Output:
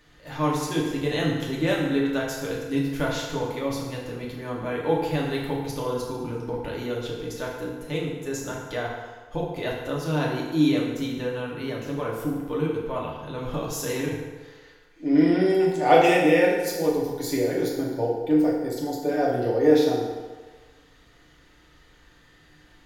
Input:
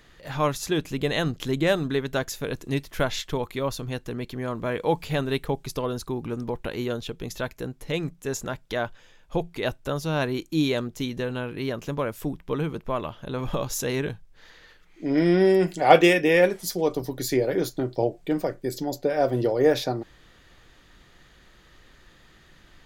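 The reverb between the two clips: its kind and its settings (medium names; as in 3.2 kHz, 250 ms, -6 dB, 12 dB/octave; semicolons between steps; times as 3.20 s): FDN reverb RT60 1.4 s, low-frequency decay 0.75×, high-frequency decay 0.7×, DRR -4 dB; trim -6 dB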